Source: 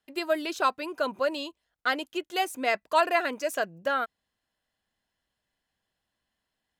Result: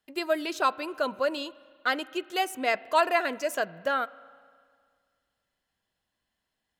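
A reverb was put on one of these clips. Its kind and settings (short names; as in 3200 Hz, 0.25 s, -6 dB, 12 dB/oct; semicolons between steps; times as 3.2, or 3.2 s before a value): spring tank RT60 2 s, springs 34/40 ms, chirp 40 ms, DRR 19.5 dB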